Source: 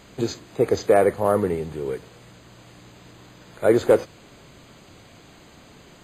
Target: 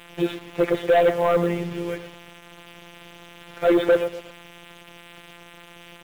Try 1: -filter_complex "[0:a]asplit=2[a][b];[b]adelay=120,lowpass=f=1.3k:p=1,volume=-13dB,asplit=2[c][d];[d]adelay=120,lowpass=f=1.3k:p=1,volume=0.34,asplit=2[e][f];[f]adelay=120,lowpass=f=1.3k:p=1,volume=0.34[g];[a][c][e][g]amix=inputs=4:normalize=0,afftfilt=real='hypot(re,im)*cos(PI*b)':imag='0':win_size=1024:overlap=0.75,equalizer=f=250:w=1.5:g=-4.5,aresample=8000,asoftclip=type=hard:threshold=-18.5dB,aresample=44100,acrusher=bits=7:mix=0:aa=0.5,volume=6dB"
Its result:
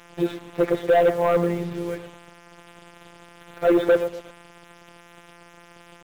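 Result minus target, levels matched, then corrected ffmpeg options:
4000 Hz band -4.5 dB
-filter_complex "[0:a]asplit=2[a][b];[b]adelay=120,lowpass=f=1.3k:p=1,volume=-13dB,asplit=2[c][d];[d]adelay=120,lowpass=f=1.3k:p=1,volume=0.34,asplit=2[e][f];[f]adelay=120,lowpass=f=1.3k:p=1,volume=0.34[g];[a][c][e][g]amix=inputs=4:normalize=0,afftfilt=real='hypot(re,im)*cos(PI*b)':imag='0':win_size=1024:overlap=0.75,lowpass=f=3k:t=q:w=2.4,equalizer=f=250:w=1.5:g=-4.5,aresample=8000,asoftclip=type=hard:threshold=-18.5dB,aresample=44100,acrusher=bits=7:mix=0:aa=0.5,volume=6dB"

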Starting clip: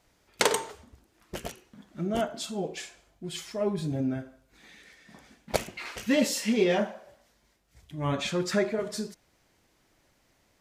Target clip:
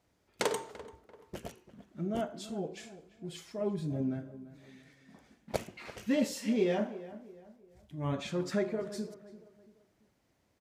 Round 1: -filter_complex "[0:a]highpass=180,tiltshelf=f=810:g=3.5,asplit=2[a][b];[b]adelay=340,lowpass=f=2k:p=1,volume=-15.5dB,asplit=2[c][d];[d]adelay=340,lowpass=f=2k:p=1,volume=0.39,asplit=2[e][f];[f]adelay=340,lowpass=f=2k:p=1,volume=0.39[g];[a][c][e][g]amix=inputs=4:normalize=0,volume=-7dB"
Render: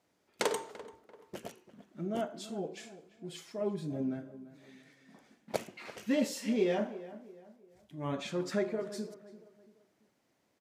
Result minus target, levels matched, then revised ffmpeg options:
125 Hz band -3.5 dB
-filter_complex "[0:a]highpass=62,tiltshelf=f=810:g=3.5,asplit=2[a][b];[b]adelay=340,lowpass=f=2k:p=1,volume=-15.5dB,asplit=2[c][d];[d]adelay=340,lowpass=f=2k:p=1,volume=0.39,asplit=2[e][f];[f]adelay=340,lowpass=f=2k:p=1,volume=0.39[g];[a][c][e][g]amix=inputs=4:normalize=0,volume=-7dB"

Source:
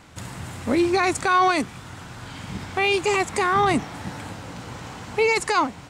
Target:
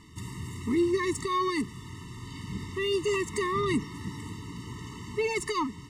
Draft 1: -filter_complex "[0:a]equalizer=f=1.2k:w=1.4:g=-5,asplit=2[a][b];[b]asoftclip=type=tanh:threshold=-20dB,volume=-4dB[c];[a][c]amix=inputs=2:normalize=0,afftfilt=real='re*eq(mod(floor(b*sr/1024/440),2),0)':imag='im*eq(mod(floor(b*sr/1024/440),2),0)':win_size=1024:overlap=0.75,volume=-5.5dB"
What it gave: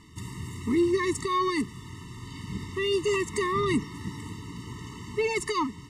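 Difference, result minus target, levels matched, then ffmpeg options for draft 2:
soft clip: distortion -8 dB
-filter_complex "[0:a]equalizer=f=1.2k:w=1.4:g=-5,asplit=2[a][b];[b]asoftclip=type=tanh:threshold=-31dB,volume=-4dB[c];[a][c]amix=inputs=2:normalize=0,afftfilt=real='re*eq(mod(floor(b*sr/1024/440),2),0)':imag='im*eq(mod(floor(b*sr/1024/440),2),0)':win_size=1024:overlap=0.75,volume=-5.5dB"

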